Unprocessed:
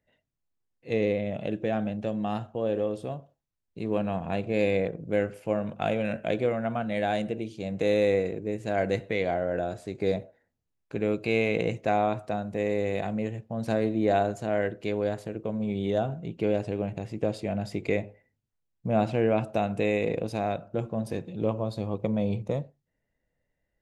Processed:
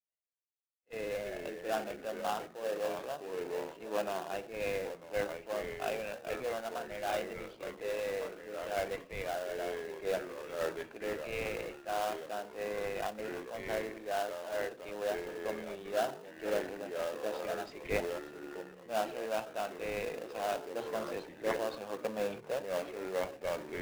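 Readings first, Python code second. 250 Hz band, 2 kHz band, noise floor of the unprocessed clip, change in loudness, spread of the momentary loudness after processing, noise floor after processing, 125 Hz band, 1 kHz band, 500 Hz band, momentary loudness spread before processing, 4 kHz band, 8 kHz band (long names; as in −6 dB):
−15.5 dB, −5.0 dB, −81 dBFS, −9.0 dB, 5 LU, −55 dBFS, −20.5 dB, −6.0 dB, −7.5 dB, 8 LU, −2.5 dB, can't be measured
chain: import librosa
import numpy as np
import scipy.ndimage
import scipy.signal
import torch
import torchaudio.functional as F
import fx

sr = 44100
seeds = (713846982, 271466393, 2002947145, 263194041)

p1 = fx.spec_quant(x, sr, step_db=15)
p2 = fx.echo_pitch(p1, sr, ms=175, semitones=-3, count=3, db_per_echo=-6.0)
p3 = fx.transient(p2, sr, attack_db=-3, sustain_db=5)
p4 = fx.bandpass_edges(p3, sr, low_hz=670.0, high_hz=3100.0)
p5 = fx.sample_hold(p4, sr, seeds[0], rate_hz=2200.0, jitter_pct=20)
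p6 = p4 + (p5 * librosa.db_to_amplitude(-3.5))
p7 = fx.rider(p6, sr, range_db=10, speed_s=0.5)
p8 = fx.band_widen(p7, sr, depth_pct=70)
y = p8 * librosa.db_to_amplitude(-5.5)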